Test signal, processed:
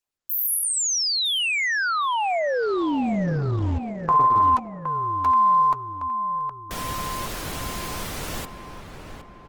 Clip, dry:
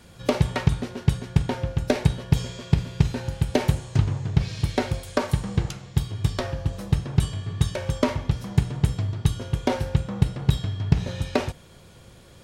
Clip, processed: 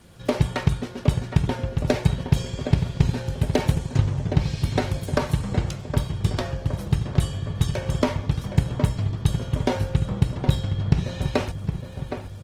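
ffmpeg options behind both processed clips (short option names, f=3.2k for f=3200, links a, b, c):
-filter_complex "[0:a]asplit=2[a][b];[b]adelay=766,lowpass=f=2.1k:p=1,volume=-7.5dB,asplit=2[c][d];[d]adelay=766,lowpass=f=2.1k:p=1,volume=0.53,asplit=2[e][f];[f]adelay=766,lowpass=f=2.1k:p=1,volume=0.53,asplit=2[g][h];[h]adelay=766,lowpass=f=2.1k:p=1,volume=0.53,asplit=2[i][j];[j]adelay=766,lowpass=f=2.1k:p=1,volume=0.53,asplit=2[k][l];[l]adelay=766,lowpass=f=2.1k:p=1,volume=0.53[m];[c][e][g][i][k][m]amix=inputs=6:normalize=0[n];[a][n]amix=inputs=2:normalize=0" -ar 48000 -c:a libopus -b:a 20k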